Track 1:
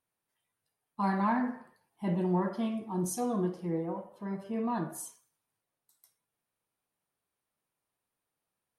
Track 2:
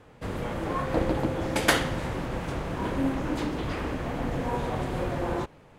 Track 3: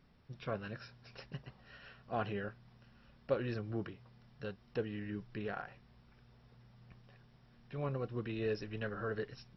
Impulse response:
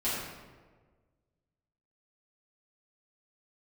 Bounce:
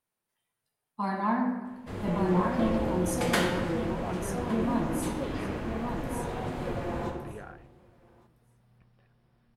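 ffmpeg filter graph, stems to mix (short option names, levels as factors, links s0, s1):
-filter_complex "[0:a]volume=0.841,asplit=3[s0][s1][s2];[s1]volume=0.251[s3];[s2]volume=0.668[s4];[1:a]adelay=1650,volume=0.355,asplit=3[s5][s6][s7];[s6]volume=0.473[s8];[s7]volume=0.075[s9];[2:a]highshelf=f=3700:g=-9,adelay=1900,volume=0.668[s10];[3:a]atrim=start_sample=2205[s11];[s3][s8]amix=inputs=2:normalize=0[s12];[s12][s11]afir=irnorm=-1:irlink=0[s13];[s4][s9]amix=inputs=2:normalize=0,aecho=0:1:1163|2326|3489:1|0.15|0.0225[s14];[s0][s5][s10][s13][s14]amix=inputs=5:normalize=0"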